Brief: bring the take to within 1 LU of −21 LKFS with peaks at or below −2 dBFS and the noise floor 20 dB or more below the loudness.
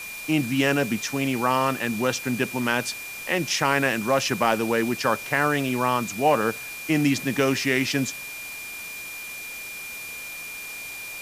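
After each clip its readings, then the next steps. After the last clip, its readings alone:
interfering tone 2,400 Hz; level of the tone −35 dBFS; background noise floor −36 dBFS; target noise floor −45 dBFS; integrated loudness −24.5 LKFS; sample peak −5.0 dBFS; target loudness −21.0 LKFS
→ notch filter 2,400 Hz, Q 30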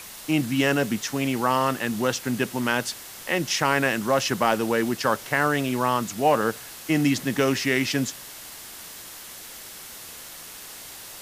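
interfering tone none found; background noise floor −41 dBFS; target noise floor −44 dBFS
→ broadband denoise 6 dB, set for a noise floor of −41 dBFS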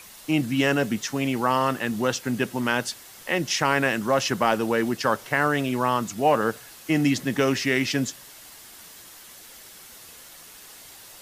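background noise floor −46 dBFS; integrated loudness −24.0 LKFS; sample peak −5.5 dBFS; target loudness −21.0 LKFS
→ level +3 dB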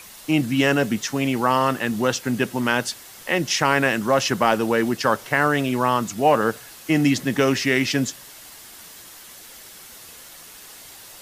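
integrated loudness −21.0 LKFS; sample peak −2.5 dBFS; background noise floor −43 dBFS

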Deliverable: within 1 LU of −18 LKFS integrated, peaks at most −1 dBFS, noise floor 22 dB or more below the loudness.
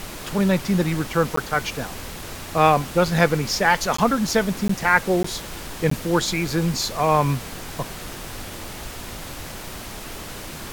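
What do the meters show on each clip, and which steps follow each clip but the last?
number of dropouts 5; longest dropout 14 ms; background noise floor −36 dBFS; target noise floor −44 dBFS; integrated loudness −21.5 LKFS; sample peak −2.5 dBFS; target loudness −18.0 LKFS
→ repair the gap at 0:01.36/0:03.97/0:04.68/0:05.23/0:05.90, 14 ms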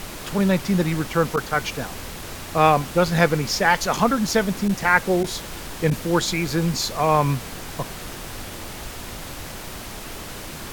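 number of dropouts 0; background noise floor −36 dBFS; target noise floor −44 dBFS
→ noise reduction from a noise print 8 dB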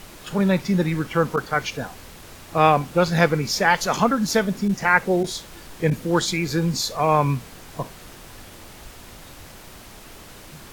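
background noise floor −43 dBFS; target noise floor −44 dBFS
→ noise reduction from a noise print 6 dB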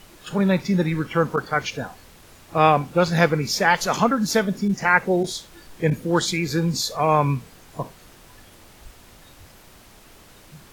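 background noise floor −49 dBFS; integrated loudness −21.5 LKFS; sample peak −3.0 dBFS; target loudness −18.0 LKFS
→ level +3.5 dB
brickwall limiter −1 dBFS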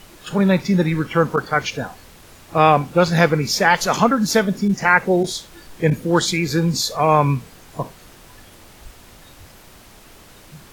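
integrated loudness −18.0 LKFS; sample peak −1.0 dBFS; background noise floor −46 dBFS

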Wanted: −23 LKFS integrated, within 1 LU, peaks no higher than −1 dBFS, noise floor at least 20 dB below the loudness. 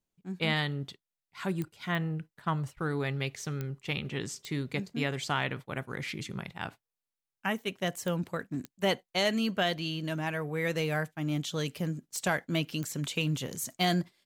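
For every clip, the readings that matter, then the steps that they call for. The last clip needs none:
number of clicks 8; integrated loudness −32.5 LKFS; sample peak −15.5 dBFS; target loudness −23.0 LKFS
→ click removal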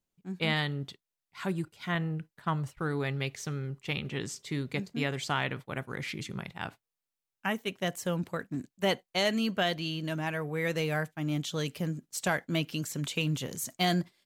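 number of clicks 0; integrated loudness −32.5 LKFS; sample peak −15.5 dBFS; target loudness −23.0 LKFS
→ level +9.5 dB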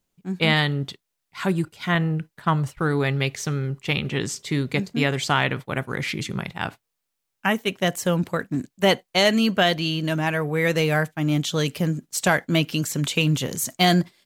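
integrated loudness −23.0 LKFS; sample peak −6.0 dBFS; background noise floor −80 dBFS

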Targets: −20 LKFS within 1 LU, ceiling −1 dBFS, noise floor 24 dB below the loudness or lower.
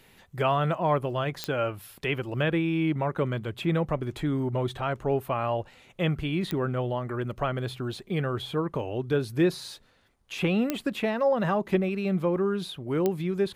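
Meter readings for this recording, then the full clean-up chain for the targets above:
number of clicks 4; integrated loudness −28.0 LKFS; sample peak −9.5 dBFS; target loudness −20.0 LKFS
→ click removal
level +8 dB

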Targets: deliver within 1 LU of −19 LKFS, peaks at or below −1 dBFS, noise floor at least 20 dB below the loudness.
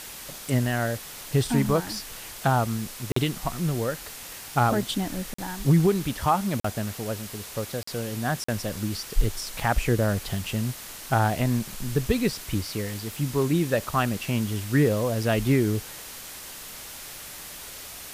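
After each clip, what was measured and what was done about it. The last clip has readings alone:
number of dropouts 5; longest dropout 44 ms; background noise floor −41 dBFS; target noise floor −47 dBFS; integrated loudness −26.5 LKFS; sample peak −10.0 dBFS; target loudness −19.0 LKFS
→ repair the gap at 0:03.12/0:05.34/0:06.60/0:07.83/0:08.44, 44 ms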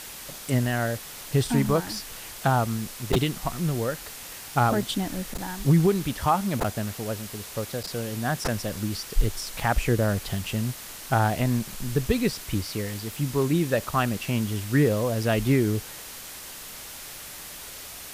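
number of dropouts 0; background noise floor −41 dBFS; target noise floor −47 dBFS
→ broadband denoise 6 dB, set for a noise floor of −41 dBFS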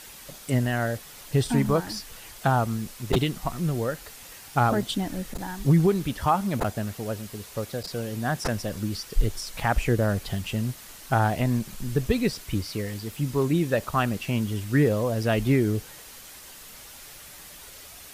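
background noise floor −45 dBFS; target noise floor −47 dBFS
→ broadband denoise 6 dB, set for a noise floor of −45 dBFS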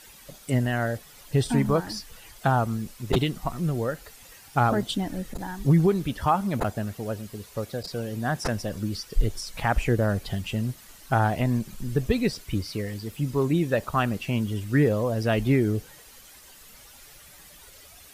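background noise floor −50 dBFS; integrated loudness −26.5 LKFS; sample peak −10.0 dBFS; target loudness −19.0 LKFS
→ level +7.5 dB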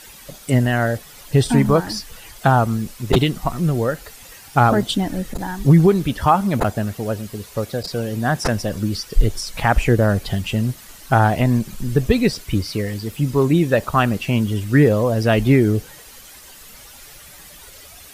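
integrated loudness −19.0 LKFS; sample peak −2.5 dBFS; background noise floor −42 dBFS

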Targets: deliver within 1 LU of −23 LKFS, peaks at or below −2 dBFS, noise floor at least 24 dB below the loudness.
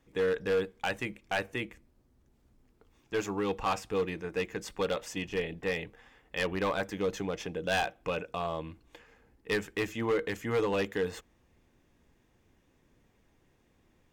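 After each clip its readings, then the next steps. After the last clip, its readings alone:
share of clipped samples 1.4%; peaks flattened at −23.5 dBFS; integrated loudness −33.0 LKFS; sample peak −23.5 dBFS; target loudness −23.0 LKFS
→ clipped peaks rebuilt −23.5 dBFS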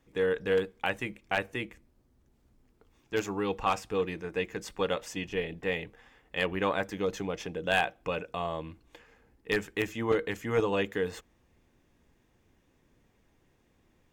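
share of clipped samples 0.0%; integrated loudness −32.0 LKFS; sample peak −14.5 dBFS; target loudness −23.0 LKFS
→ level +9 dB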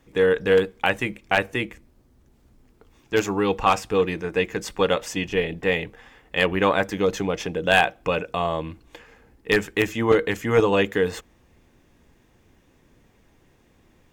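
integrated loudness −23.0 LKFS; sample peak −5.5 dBFS; background noise floor −60 dBFS

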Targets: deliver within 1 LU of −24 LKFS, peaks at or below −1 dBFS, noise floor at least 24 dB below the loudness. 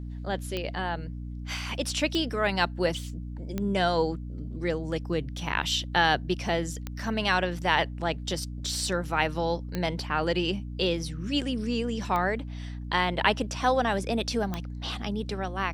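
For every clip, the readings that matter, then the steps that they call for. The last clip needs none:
number of clicks 7; mains hum 60 Hz; hum harmonics up to 300 Hz; level of the hum −34 dBFS; integrated loudness −28.5 LKFS; sample peak −6.0 dBFS; target loudness −24.0 LKFS
→ click removal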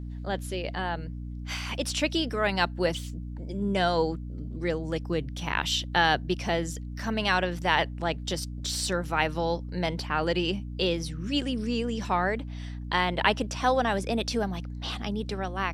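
number of clicks 0; mains hum 60 Hz; hum harmonics up to 300 Hz; level of the hum −34 dBFS
→ hum removal 60 Hz, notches 5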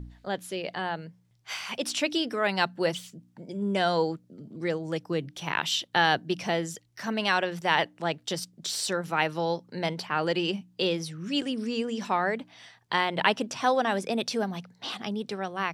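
mains hum none found; integrated loudness −29.0 LKFS; sample peak −6.5 dBFS; target loudness −24.0 LKFS
→ level +5 dB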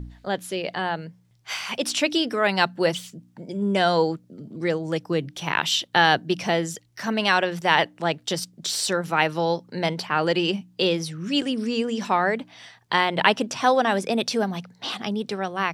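integrated loudness −24.0 LKFS; sample peak −1.5 dBFS; background noise floor −59 dBFS

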